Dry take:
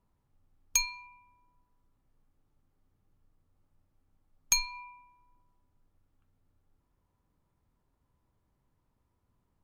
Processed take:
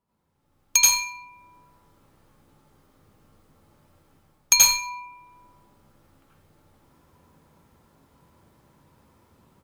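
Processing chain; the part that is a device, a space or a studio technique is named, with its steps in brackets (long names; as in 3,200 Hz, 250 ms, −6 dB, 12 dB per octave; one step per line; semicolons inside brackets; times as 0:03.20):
far laptop microphone (convolution reverb RT60 0.40 s, pre-delay 76 ms, DRR −6 dB; high-pass filter 180 Hz 6 dB per octave; automatic gain control gain up to 16.5 dB)
level −2 dB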